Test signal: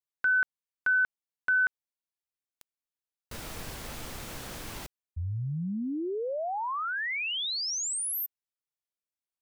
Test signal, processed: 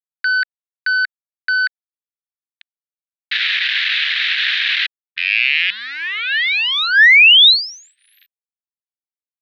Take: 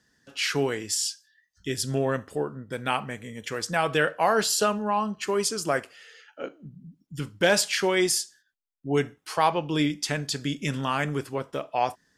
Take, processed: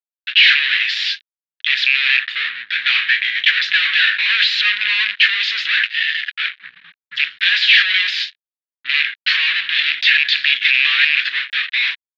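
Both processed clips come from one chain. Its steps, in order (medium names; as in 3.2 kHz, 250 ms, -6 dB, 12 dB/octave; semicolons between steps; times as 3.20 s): rattle on loud lows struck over -32 dBFS, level -24 dBFS; fuzz box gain 44 dB, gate -52 dBFS; elliptic band-pass 1.7–3.9 kHz, stop band 50 dB; trim +7.5 dB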